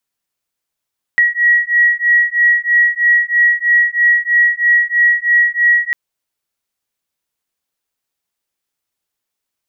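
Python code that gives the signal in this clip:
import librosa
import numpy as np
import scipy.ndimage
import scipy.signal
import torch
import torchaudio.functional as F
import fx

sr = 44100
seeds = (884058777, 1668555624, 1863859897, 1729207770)

y = fx.two_tone_beats(sr, length_s=4.75, hz=1910.0, beat_hz=3.1, level_db=-12.5)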